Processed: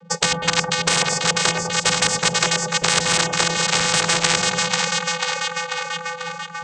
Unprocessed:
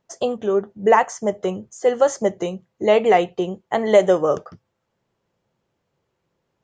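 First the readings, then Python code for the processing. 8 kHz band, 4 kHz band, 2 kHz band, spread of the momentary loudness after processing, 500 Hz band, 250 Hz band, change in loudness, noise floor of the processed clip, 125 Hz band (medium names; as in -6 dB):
+18.5 dB, +19.0 dB, +11.0 dB, 8 LU, -9.5 dB, -3.5 dB, +1.0 dB, -33 dBFS, +7.5 dB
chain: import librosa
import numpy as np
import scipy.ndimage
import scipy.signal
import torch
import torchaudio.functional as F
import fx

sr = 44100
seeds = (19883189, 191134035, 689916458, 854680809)

p1 = fx.law_mismatch(x, sr, coded='A')
p2 = fx.high_shelf(p1, sr, hz=5400.0, db=-8.5)
p3 = fx.over_compress(p2, sr, threshold_db=-22.0, ratio=-1.0)
p4 = p2 + (p3 * 10.0 ** (-1.5 / 20.0))
p5 = (np.mod(10.0 ** (9.5 / 20.0) * p4 + 1.0, 2.0) - 1.0) / 10.0 ** (9.5 / 20.0)
p6 = fx.vocoder(p5, sr, bands=16, carrier='square', carrier_hz=168.0)
p7 = p6 + fx.echo_split(p6, sr, split_hz=830.0, low_ms=99, high_ms=491, feedback_pct=52, wet_db=-9.0, dry=0)
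p8 = fx.spectral_comp(p7, sr, ratio=10.0)
y = p8 * 10.0 ** (3.5 / 20.0)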